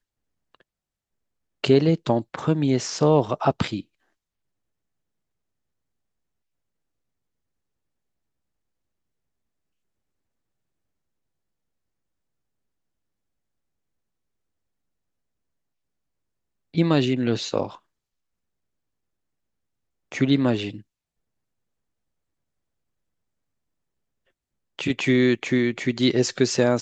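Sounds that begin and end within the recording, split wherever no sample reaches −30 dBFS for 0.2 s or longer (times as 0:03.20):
0:01.64–0:03.80
0:16.75–0:17.67
0:20.12–0:20.76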